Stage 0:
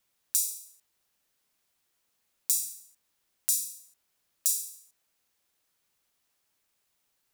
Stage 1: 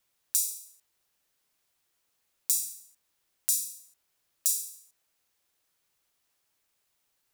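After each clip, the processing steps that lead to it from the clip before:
parametric band 220 Hz −5.5 dB 0.29 octaves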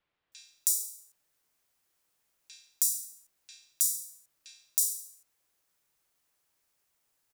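multiband delay without the direct sound lows, highs 320 ms, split 3,500 Hz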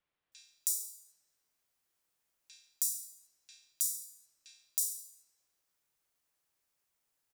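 comb and all-pass reverb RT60 3.4 s, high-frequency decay 0.6×, pre-delay 95 ms, DRR 18.5 dB
level −5.5 dB

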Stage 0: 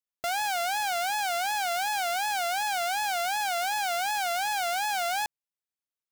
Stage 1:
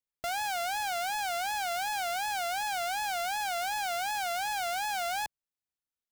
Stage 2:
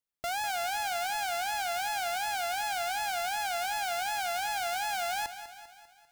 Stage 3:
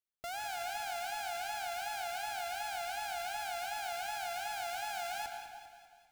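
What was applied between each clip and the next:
low-shelf EQ 150 Hz +10 dB; level −4 dB
feedback echo at a low word length 198 ms, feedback 55%, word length 11 bits, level −11.5 dB
convolution reverb RT60 1.7 s, pre-delay 86 ms, DRR 5.5 dB; level −8 dB

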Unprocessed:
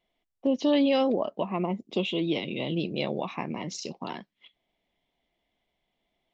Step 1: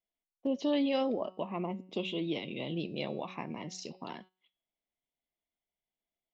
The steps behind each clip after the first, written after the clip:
hum removal 185.6 Hz, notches 29
noise gate −47 dBFS, range −12 dB
level −6.5 dB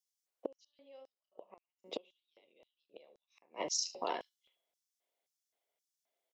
ambience of single reflections 41 ms −16 dB, 76 ms −16.5 dB
gate with flip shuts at −28 dBFS, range −34 dB
auto-filter high-pass square 1.9 Hz 500–5,600 Hz
level +4 dB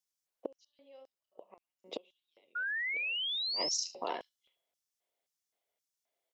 sound drawn into the spectrogram rise, 0:02.55–0:03.76, 1,400–5,800 Hz −35 dBFS

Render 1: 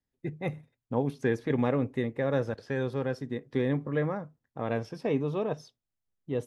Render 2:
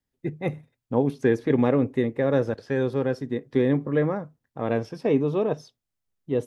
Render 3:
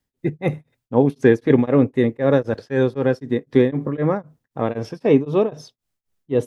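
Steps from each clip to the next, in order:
dynamic equaliser 340 Hz, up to +5 dB, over −37 dBFS, Q 0.98; level +3 dB
tremolo along a rectified sine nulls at 3.9 Hz; level +7.5 dB

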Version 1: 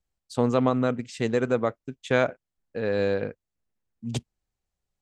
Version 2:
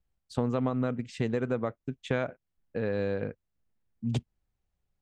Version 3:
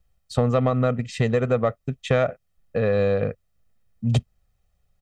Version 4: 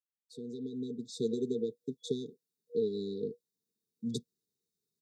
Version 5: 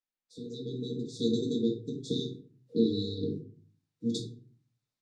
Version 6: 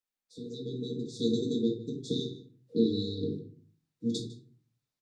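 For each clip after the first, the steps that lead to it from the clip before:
downward compressor 2.5 to 1, threshold −30 dBFS, peak gain reduction 9.5 dB; bass and treble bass +5 dB, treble −8 dB
comb filter 1.6 ms, depth 59%; in parallel at −7 dB: soft clipping −25 dBFS, distortion −14 dB; on the sum: level +5.5 dB
fade in at the beginning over 1.38 s; brick-wall band-stop 480–3,400 Hz; four-pole ladder high-pass 210 Hz, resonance 20%
ceiling on every frequency bin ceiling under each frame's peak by 19 dB; high-frequency loss of the air 79 metres; convolution reverb RT60 0.45 s, pre-delay 4 ms, DRR −1 dB
single-tap delay 153 ms −19 dB

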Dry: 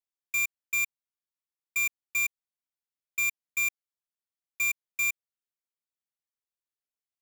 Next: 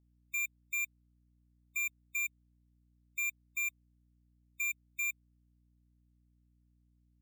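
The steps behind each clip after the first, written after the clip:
gate on every frequency bin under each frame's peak −25 dB strong
mains hum 60 Hz, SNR 28 dB
level −7 dB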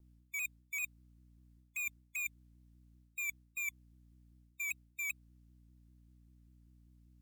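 reversed playback
downward compressor 12 to 1, threshold −45 dBFS, peak gain reduction 11.5 dB
reversed playback
pitch modulation by a square or saw wave saw down 5.1 Hz, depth 100 cents
level +7 dB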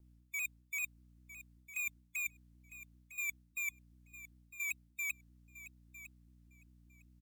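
repeating echo 955 ms, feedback 15%, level −14.5 dB

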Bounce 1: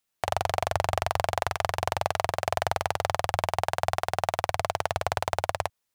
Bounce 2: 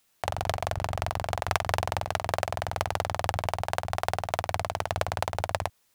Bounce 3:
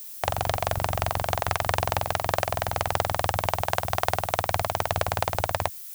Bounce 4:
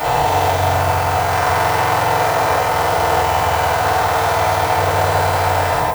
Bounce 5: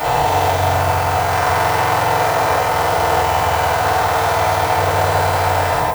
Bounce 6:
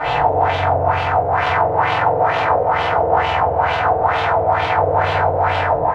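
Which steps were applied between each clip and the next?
compressor whose output falls as the input rises −32 dBFS, ratio −0.5; level +5 dB
background noise violet −44 dBFS; boost into a limiter +7 dB; level −3 dB
every bin's largest magnitude spread in time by 480 ms; feedback delay network reverb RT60 0.41 s, low-frequency decay 0.85×, high-frequency decay 0.45×, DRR −9.5 dB; level −7.5 dB
no processing that can be heard
auto-filter low-pass sine 2.2 Hz 520–3,200 Hz; level −3 dB

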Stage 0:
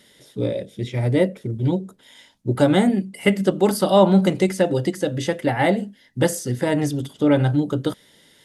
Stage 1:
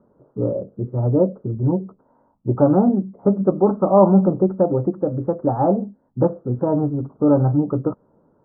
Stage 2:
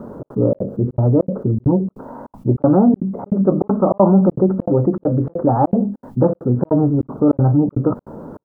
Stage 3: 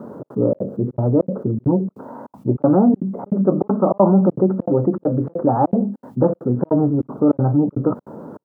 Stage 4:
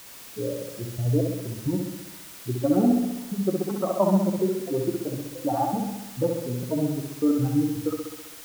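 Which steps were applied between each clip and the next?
Butterworth low-pass 1,300 Hz 72 dB per octave; level +1.5 dB
parametric band 240 Hz +3.5 dB 0.26 octaves; gate pattern "xxx.xxx.x" 199 BPM −60 dB; envelope flattener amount 50%
high-pass filter 130 Hz; level −1 dB
spectral dynamics exaggerated over time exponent 2; background noise white −41 dBFS; flutter between parallel walls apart 11.2 metres, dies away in 1 s; level −5 dB

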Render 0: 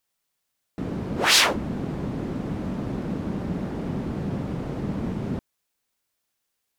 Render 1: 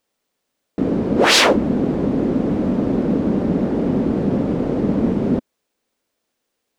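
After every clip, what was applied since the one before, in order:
graphic EQ with 10 bands 125 Hz −3 dB, 250 Hz +8 dB, 500 Hz +8 dB, 16,000 Hz −9 dB
level +4.5 dB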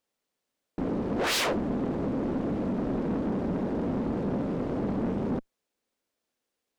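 tube saturation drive 19 dB, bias 0.6
level −5.5 dB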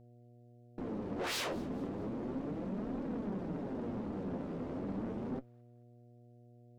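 flanger 0.33 Hz, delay 3.4 ms, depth 9.3 ms, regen +48%
hum with harmonics 120 Hz, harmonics 6, −53 dBFS −6 dB per octave
delay with a high-pass on its return 218 ms, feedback 41%, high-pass 1,600 Hz, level −23.5 dB
level −6 dB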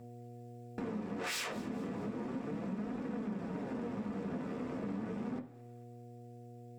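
speech leveller 0.5 s
convolution reverb RT60 0.50 s, pre-delay 3 ms, DRR 5.5 dB
downward compressor 2.5 to 1, threshold −54 dBFS, peak gain reduction 11.5 dB
level +13 dB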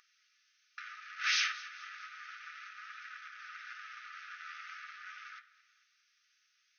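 linear-phase brick-wall band-pass 1,200–6,500 Hz
level +9 dB

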